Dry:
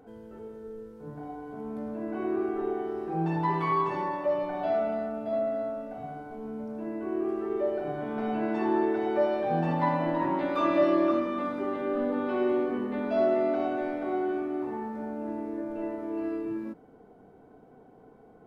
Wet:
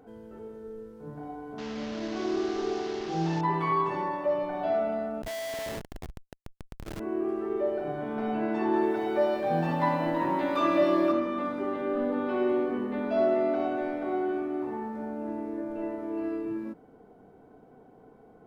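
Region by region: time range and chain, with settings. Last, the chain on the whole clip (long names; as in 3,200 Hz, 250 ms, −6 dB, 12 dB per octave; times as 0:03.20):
0:01.58–0:03.41: linear delta modulator 32 kbit/s, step −34 dBFS + notch filter 2,400 Hz, Q 29
0:05.22–0:07.00: high-pass filter 300 Hz 24 dB per octave + comparator with hysteresis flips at −33.5 dBFS + saturating transformer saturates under 68 Hz
0:08.73–0:11.12: high-shelf EQ 3,800 Hz +7 dB + feedback echo at a low word length 87 ms, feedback 80%, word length 9 bits, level −14 dB
whole clip: no processing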